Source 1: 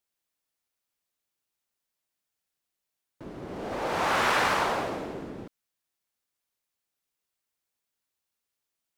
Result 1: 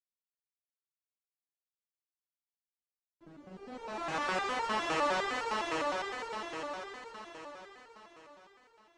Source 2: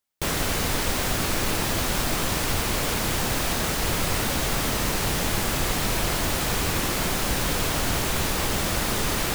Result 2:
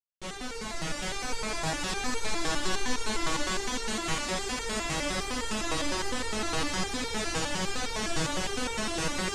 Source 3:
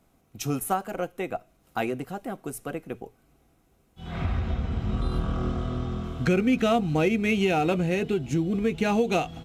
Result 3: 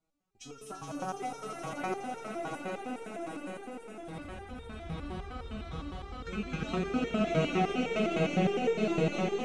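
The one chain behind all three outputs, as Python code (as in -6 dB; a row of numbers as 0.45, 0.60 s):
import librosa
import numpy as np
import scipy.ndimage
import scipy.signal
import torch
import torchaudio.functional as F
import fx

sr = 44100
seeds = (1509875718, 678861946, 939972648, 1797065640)

p1 = fx.law_mismatch(x, sr, coded='A')
p2 = scipy.signal.sosfilt(scipy.signal.butter(4, 8400.0, 'lowpass', fs=sr, output='sos'), p1)
p3 = p2 + fx.echo_swell(p2, sr, ms=84, loudest=8, wet_db=-5.5, dry=0)
p4 = fx.resonator_held(p3, sr, hz=9.8, low_hz=160.0, high_hz=460.0)
y = p4 * 10.0 ** (2.5 / 20.0)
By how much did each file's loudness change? -7.5, -7.0, -7.0 LU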